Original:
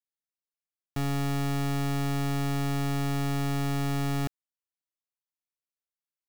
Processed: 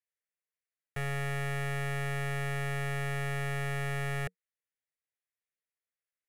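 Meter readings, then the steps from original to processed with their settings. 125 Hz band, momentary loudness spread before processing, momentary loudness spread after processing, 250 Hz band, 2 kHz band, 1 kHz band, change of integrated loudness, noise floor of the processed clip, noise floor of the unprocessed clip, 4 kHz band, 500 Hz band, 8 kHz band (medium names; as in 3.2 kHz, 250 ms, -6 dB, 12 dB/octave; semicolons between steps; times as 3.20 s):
-5.0 dB, 3 LU, 3 LU, -12.0 dB, +4.5 dB, -4.5 dB, -4.5 dB, under -85 dBFS, under -85 dBFS, -5.5 dB, -2.0 dB, -6.0 dB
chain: FFT filter 180 Hz 0 dB, 260 Hz -27 dB, 460 Hz +9 dB, 960 Hz -5 dB, 1.9 kHz +12 dB, 4.5 kHz -7 dB, 11 kHz +3 dB, 15 kHz -11 dB; trim -5 dB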